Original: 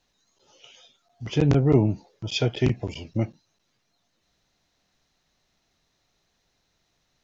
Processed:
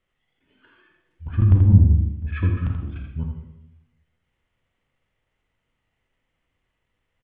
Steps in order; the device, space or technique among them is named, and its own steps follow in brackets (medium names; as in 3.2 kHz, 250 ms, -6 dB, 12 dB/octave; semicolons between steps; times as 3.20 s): monster voice (pitch shift -6 st; formant shift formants -6 st; bass shelf 170 Hz +5 dB; delay 82 ms -7 dB; reverberation RT60 0.85 s, pre-delay 33 ms, DRR 4.5 dB); 1.26–2.57 s: tilt EQ -2 dB/octave; trim -7 dB